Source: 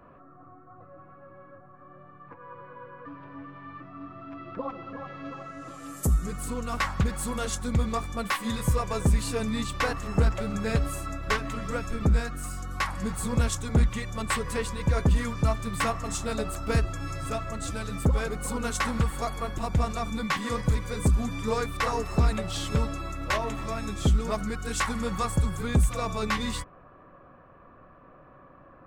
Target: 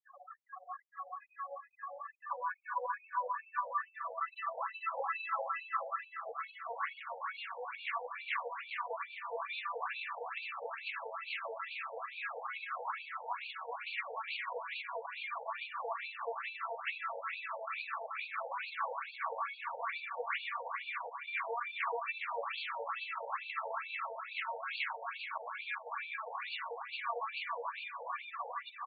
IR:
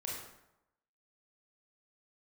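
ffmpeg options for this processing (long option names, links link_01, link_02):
-filter_complex "[0:a]asplit=2[link_01][link_02];[link_02]aecho=0:1:1065|2130|3195|4260|5325|6390:0.422|0.207|0.101|0.0496|0.0243|0.0119[link_03];[link_01][link_03]amix=inputs=2:normalize=0,afftfilt=real='re*gte(hypot(re,im),0.00891)':imag='im*gte(hypot(re,im),0.00891)':win_size=1024:overlap=0.75,acompressor=threshold=-33dB:ratio=16,highpass=frequency=100:poles=1,alimiter=level_in=10dB:limit=-24dB:level=0:latency=1:release=87,volume=-10dB,superequalizer=8b=0.631:12b=1.78:13b=0.562,asplit=2[link_04][link_05];[link_05]adelay=408,lowpass=frequency=4300:poles=1,volume=-4dB,asplit=2[link_06][link_07];[link_07]adelay=408,lowpass=frequency=4300:poles=1,volume=0.44,asplit=2[link_08][link_09];[link_09]adelay=408,lowpass=frequency=4300:poles=1,volume=0.44,asplit=2[link_10][link_11];[link_11]adelay=408,lowpass=frequency=4300:poles=1,volume=0.44,asplit=2[link_12][link_13];[link_13]adelay=408,lowpass=frequency=4300:poles=1,volume=0.44,asplit=2[link_14][link_15];[link_15]adelay=408,lowpass=frequency=4300:poles=1,volume=0.44[link_16];[link_06][link_08][link_10][link_12][link_14][link_16]amix=inputs=6:normalize=0[link_17];[link_04][link_17]amix=inputs=2:normalize=0,adynamicequalizer=threshold=0.00112:dfrequency=960:dqfactor=5.6:tfrequency=960:tqfactor=5.6:attack=5:release=100:ratio=0.375:range=2:mode=boostabove:tftype=bell,asplit=2[link_18][link_19];[link_19]asetrate=66075,aresample=44100,atempo=0.66742,volume=-12dB[link_20];[link_18][link_20]amix=inputs=2:normalize=0,afftfilt=real='re*between(b*sr/1024,640*pow(3300/640,0.5+0.5*sin(2*PI*2.3*pts/sr))/1.41,640*pow(3300/640,0.5+0.5*sin(2*PI*2.3*pts/sr))*1.41)':imag='im*between(b*sr/1024,640*pow(3300/640,0.5+0.5*sin(2*PI*2.3*pts/sr))/1.41,640*pow(3300/640,0.5+0.5*sin(2*PI*2.3*pts/sr))*1.41)':win_size=1024:overlap=0.75,volume=10dB"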